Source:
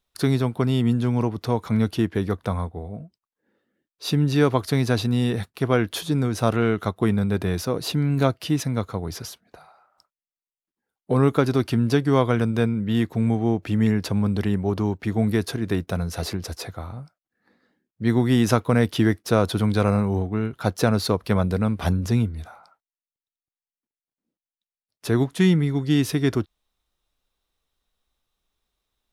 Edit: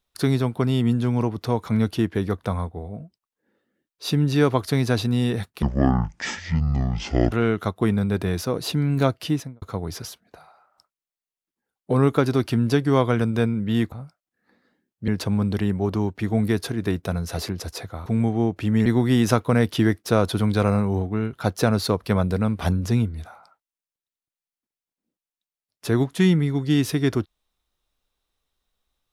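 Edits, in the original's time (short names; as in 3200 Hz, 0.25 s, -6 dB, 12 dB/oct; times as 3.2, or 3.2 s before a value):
5.62–6.52 speed 53%
8.47–8.82 studio fade out
13.12–13.92 swap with 16.9–18.06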